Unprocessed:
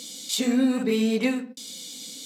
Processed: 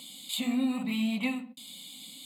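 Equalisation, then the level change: fixed phaser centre 1600 Hz, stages 6; -2.0 dB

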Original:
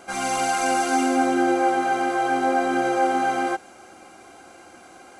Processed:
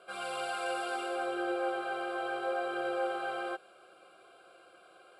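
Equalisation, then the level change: HPF 210 Hz 12 dB/oct; LPF 8700 Hz 12 dB/oct; fixed phaser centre 1300 Hz, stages 8; -7.5 dB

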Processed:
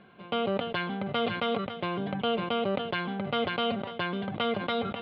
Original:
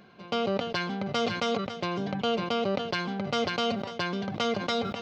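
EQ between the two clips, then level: elliptic low-pass 3500 Hz, stop band 80 dB; 0.0 dB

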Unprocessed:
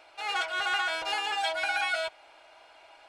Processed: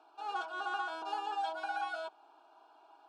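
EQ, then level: HPF 200 Hz 24 dB/oct; LPF 1000 Hz 6 dB/oct; fixed phaser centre 550 Hz, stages 6; 0.0 dB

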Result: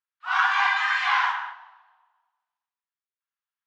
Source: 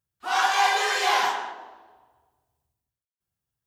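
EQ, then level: steep high-pass 980 Hz 36 dB/oct; LPF 2600 Hz 12 dB/oct; dynamic EQ 1300 Hz, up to +4 dB, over -38 dBFS, Q 0.83; +1.0 dB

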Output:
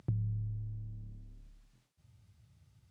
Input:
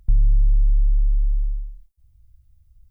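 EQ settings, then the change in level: HPF 130 Hz 24 dB/oct; air absorption 69 m; dynamic EQ 180 Hz, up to -8 dB, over -57 dBFS, Q 0.98; +10.5 dB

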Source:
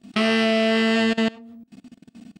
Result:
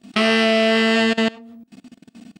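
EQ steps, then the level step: low shelf 220 Hz -6.5 dB; +4.5 dB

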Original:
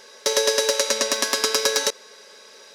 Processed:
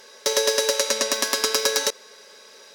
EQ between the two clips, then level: bell 16000 Hz +14.5 dB 0.24 oct; -1.0 dB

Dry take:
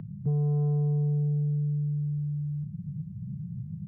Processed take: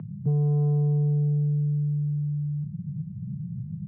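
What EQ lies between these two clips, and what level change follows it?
HPF 93 Hz; air absorption 430 m; +4.0 dB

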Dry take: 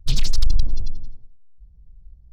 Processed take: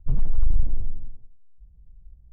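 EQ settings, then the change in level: LPF 1100 Hz 24 dB/oct; -2.5 dB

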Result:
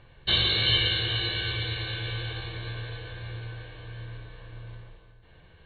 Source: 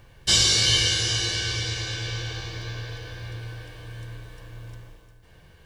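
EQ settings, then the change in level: brick-wall FIR low-pass 4400 Hz; notches 50/100/150/200/250/300 Hz; -1.5 dB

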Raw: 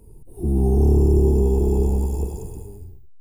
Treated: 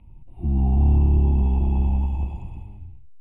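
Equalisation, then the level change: synth low-pass 2600 Hz, resonance Q 2.6; fixed phaser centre 1600 Hz, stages 6; 0.0 dB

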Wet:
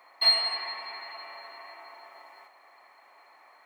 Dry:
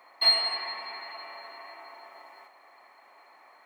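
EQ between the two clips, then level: low shelf 370 Hz -6 dB; 0.0 dB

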